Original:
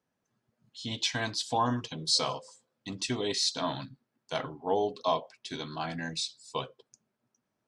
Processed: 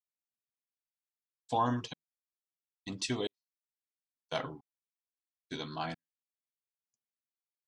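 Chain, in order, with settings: trance gate ".xxx....." 101 bpm -60 dB; expander -44 dBFS; trim -2 dB

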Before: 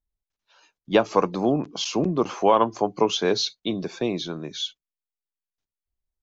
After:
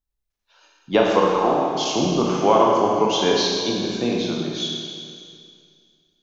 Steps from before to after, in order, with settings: 1.31–1.73 s: graphic EQ 125/250/1000/2000/4000 Hz -10/-8/+11/+6/-10 dB; Schroeder reverb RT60 2.2 s, combs from 26 ms, DRR -2.5 dB

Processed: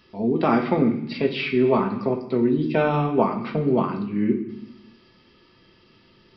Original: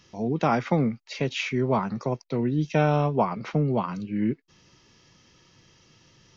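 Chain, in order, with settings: small resonant body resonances 370/1200 Hz, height 8 dB; on a send at -2.5 dB: reverberation RT60 0.85 s, pre-delay 3 ms; on the sum: resampled via 11.025 kHz

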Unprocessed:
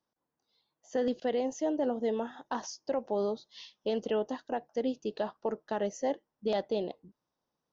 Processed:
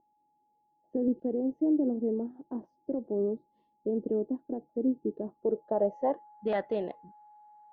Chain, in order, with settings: whistle 840 Hz -55 dBFS; low-pass sweep 330 Hz -> 1.8 kHz, 5.37–6.40 s

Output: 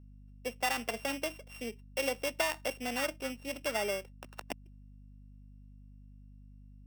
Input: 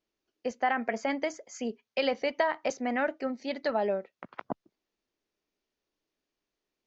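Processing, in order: sorted samples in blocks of 16 samples; high-pass 250 Hz; hum 50 Hz, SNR 15 dB; trim -4.5 dB

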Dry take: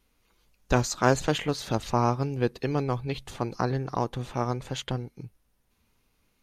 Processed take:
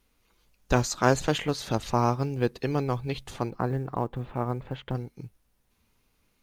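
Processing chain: 3.50–4.95 s: distance through air 480 m; companded quantiser 8-bit

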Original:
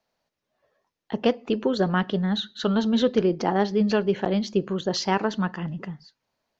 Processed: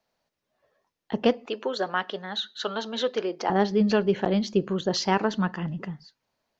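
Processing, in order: 1.46–3.50 s: high-pass 530 Hz 12 dB/octave

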